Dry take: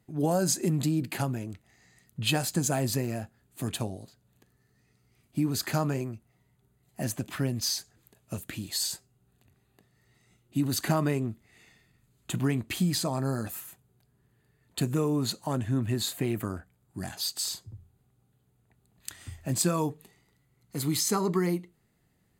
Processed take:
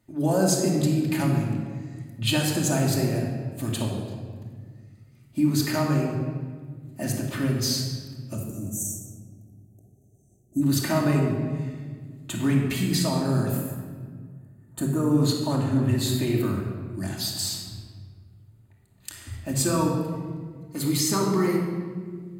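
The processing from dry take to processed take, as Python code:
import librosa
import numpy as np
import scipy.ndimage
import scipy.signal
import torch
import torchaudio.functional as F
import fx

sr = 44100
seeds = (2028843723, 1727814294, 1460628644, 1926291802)

y = fx.spec_erase(x, sr, start_s=8.35, length_s=2.27, low_hz=800.0, high_hz=5500.0)
y = fx.band_shelf(y, sr, hz=3400.0, db=-13.0, octaves=1.7, at=(13.57, 15.11))
y = fx.room_shoebox(y, sr, seeds[0], volume_m3=2300.0, walls='mixed', distance_m=2.6)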